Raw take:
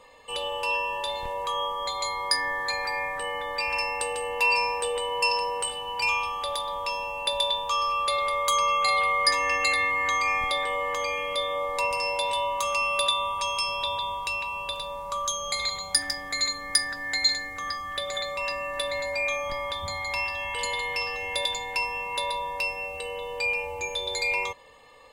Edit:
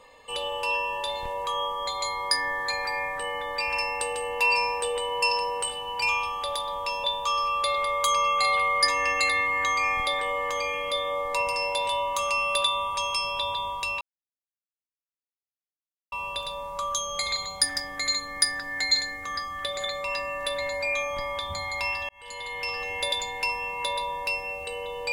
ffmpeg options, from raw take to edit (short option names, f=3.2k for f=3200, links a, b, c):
-filter_complex "[0:a]asplit=4[a][b][c][d];[a]atrim=end=7.042[e];[b]atrim=start=7.478:end=14.45,asetpts=PTS-STARTPTS,afade=t=out:st=6.968:d=0.004:c=hsin,apad=pad_dur=2.11[f];[c]atrim=start=14.45:end=20.42,asetpts=PTS-STARTPTS,afade=t=in:d=0.004:c=hsin,afade=t=out:st=5.966:d=0.004:c=hsin[g];[d]atrim=start=20.42,asetpts=PTS-STARTPTS,afade=t=in:d=0.73[h];[f][g][h]concat=n=3:v=0:a=1[i];[e][i]acrossfade=d=0.004:c1=hsin:c2=hsin"